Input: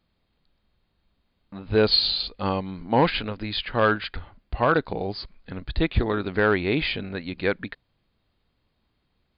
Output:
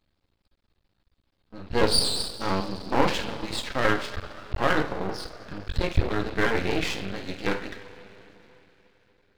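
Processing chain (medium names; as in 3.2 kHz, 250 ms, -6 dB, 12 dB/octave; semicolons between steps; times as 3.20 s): pitch shift switched off and on +1.5 st, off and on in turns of 113 ms; two-slope reverb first 0.38 s, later 3.8 s, from -18 dB, DRR 1.5 dB; half-wave rectifier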